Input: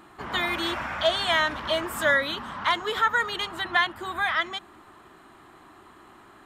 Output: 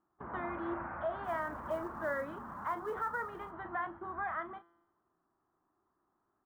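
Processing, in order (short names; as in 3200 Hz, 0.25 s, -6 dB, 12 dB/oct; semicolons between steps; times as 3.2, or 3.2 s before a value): LPF 1400 Hz 24 dB/oct; gate -39 dBFS, range -20 dB; limiter -18.5 dBFS, peak gain reduction 4.5 dB; resonator 170 Hz, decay 0.98 s, harmonics all, mix 50%; 1.24–3.51 short-mantissa float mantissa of 4-bit; doubler 35 ms -11 dB; gain -2.5 dB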